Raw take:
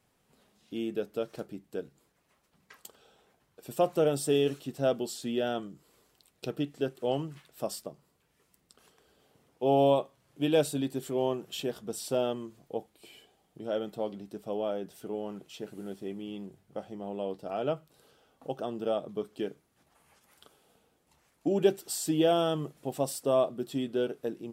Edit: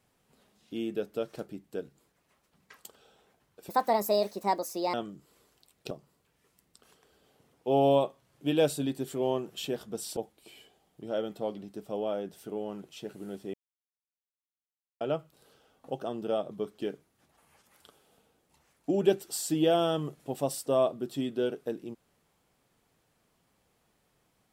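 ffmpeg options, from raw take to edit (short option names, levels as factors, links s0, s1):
-filter_complex "[0:a]asplit=7[s0][s1][s2][s3][s4][s5][s6];[s0]atrim=end=3.694[s7];[s1]atrim=start=3.69:end=5.51,asetpts=PTS-STARTPTS,asetrate=64386,aresample=44100[s8];[s2]atrim=start=5.506:end=6.482[s9];[s3]atrim=start=7.858:end=12.122[s10];[s4]atrim=start=12.738:end=16.11,asetpts=PTS-STARTPTS,afade=t=out:st=3.368:d=0.004:c=hsin[s11];[s5]atrim=start=16.11:end=17.58,asetpts=PTS-STARTPTS,volume=0[s12];[s6]atrim=start=17.58,asetpts=PTS-STARTPTS,afade=t=in:d=0.004:c=hsin[s13];[s7][s8]acrossfade=d=0.004:c1=hsin:c2=hsin[s14];[s14][s9]acrossfade=d=0.004:c1=hsin:c2=hsin[s15];[s15][s10]acrossfade=d=0.004:c1=hsin:c2=hsin[s16];[s11][s12][s13]concat=n=3:v=0:a=1[s17];[s16][s17]acrossfade=d=0.004:c1=hsin:c2=hsin"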